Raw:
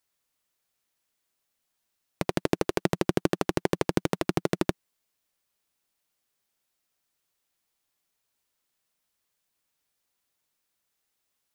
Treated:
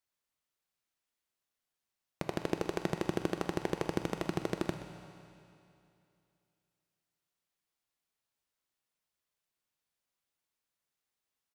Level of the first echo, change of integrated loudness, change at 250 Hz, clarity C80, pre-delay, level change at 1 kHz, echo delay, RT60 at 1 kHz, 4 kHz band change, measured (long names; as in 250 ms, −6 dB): −15.0 dB, −7.5 dB, −7.5 dB, 7.0 dB, 7 ms, −7.0 dB, 125 ms, 2.7 s, −8.0 dB